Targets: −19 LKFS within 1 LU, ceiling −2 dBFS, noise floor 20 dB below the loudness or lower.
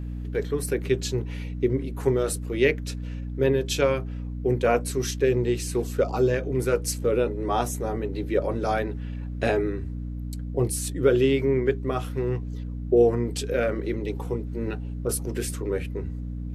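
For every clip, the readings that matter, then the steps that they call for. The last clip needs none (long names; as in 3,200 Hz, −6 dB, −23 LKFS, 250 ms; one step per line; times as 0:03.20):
mains hum 60 Hz; hum harmonics up to 300 Hz; level of the hum −30 dBFS; integrated loudness −26.0 LKFS; sample peak −8.0 dBFS; target loudness −19.0 LKFS
→ mains-hum notches 60/120/180/240/300 Hz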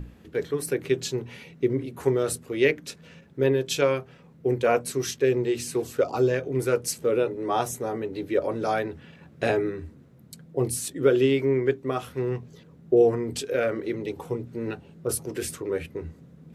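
mains hum none found; integrated loudness −26.5 LKFS; sample peak −8.5 dBFS; target loudness −19.0 LKFS
→ level +7.5 dB
brickwall limiter −2 dBFS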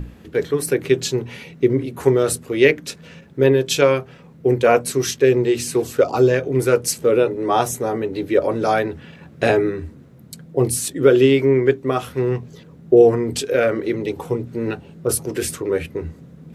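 integrated loudness −19.0 LKFS; sample peak −2.0 dBFS; background noise floor −45 dBFS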